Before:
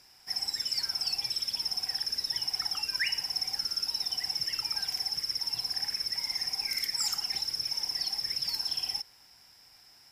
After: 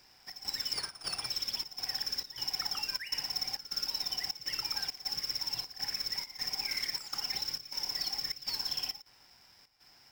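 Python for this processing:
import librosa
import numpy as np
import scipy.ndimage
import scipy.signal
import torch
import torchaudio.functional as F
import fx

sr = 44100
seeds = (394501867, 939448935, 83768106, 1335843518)

y = scipy.signal.medfilt(x, 5)
y = fx.step_gate(y, sr, bpm=101, pattern='xx.xxx.xx', floor_db=-12.0, edge_ms=4.5)
y = fx.resample_linear(y, sr, factor=3, at=(0.73, 1.26))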